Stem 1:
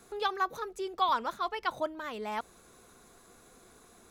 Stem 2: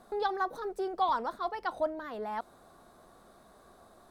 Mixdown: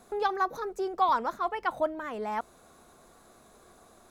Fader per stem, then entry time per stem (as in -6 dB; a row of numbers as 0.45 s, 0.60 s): -3.0 dB, -1.5 dB; 0.00 s, 0.00 s